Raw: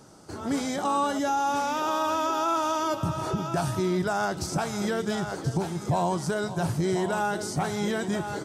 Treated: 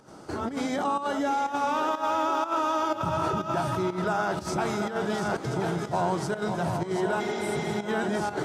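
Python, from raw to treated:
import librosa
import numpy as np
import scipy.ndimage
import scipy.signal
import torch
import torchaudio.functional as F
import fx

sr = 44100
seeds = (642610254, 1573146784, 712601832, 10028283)

p1 = fx.over_compress(x, sr, threshold_db=-34.0, ratio=-1.0)
p2 = x + (p1 * 10.0 ** (-0.5 / 20.0))
p3 = fx.bass_treble(p2, sr, bass_db=-4, treble_db=-9)
p4 = fx.hum_notches(p3, sr, base_hz=50, count=3)
p5 = p4 + fx.echo_split(p4, sr, split_hz=330.0, low_ms=99, high_ms=733, feedback_pct=52, wet_db=-7, dry=0)
p6 = fx.volume_shaper(p5, sr, bpm=123, per_beat=1, depth_db=-11, release_ms=76.0, shape='slow start')
p7 = fx.spec_repair(p6, sr, seeds[0], start_s=7.23, length_s=0.5, low_hz=220.0, high_hz=7500.0, source='after')
y = p7 * 10.0 ** (-2.5 / 20.0)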